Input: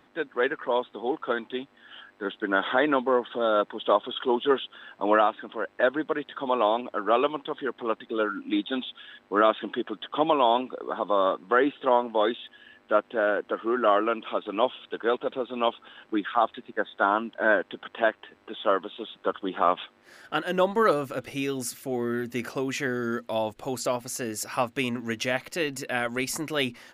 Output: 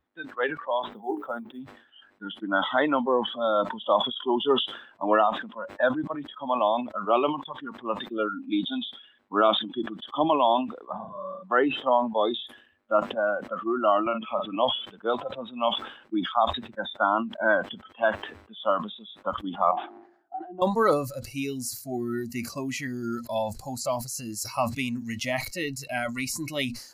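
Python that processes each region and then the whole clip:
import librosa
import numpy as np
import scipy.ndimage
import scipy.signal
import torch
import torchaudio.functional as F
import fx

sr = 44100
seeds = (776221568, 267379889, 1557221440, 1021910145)

y = fx.chain(x, sr, fx.high_shelf(hz=2400.0, db=-12.0),
    fx.hum_notches(base_hz=60, count=7),
    fx.quant_float(bits=6), at=(0.82, 1.6))
y = fx.chain(y, sr, fx.low_shelf(hz=270.0, db=11.0),
    fx.level_steps(step_db=18),
    fx.room_flutter(wall_m=6.4, rt60_s=0.67), at=(10.92, 11.43))
y = fx.chain(y, sr, fx.lowpass(hz=3500.0, slope=24),
    fx.doubler(ms=45.0, db=-13.0),
    fx.band_squash(depth_pct=70), at=(14.06, 14.56))
y = fx.chain(y, sr, fx.double_bandpass(hz=500.0, octaves=1.1),
    fx.band_squash(depth_pct=40), at=(19.71, 20.62))
y = fx.noise_reduce_blind(y, sr, reduce_db=20)
y = fx.peak_eq(y, sr, hz=2900.0, db=-2.5, octaves=0.59)
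y = fx.sustainer(y, sr, db_per_s=94.0)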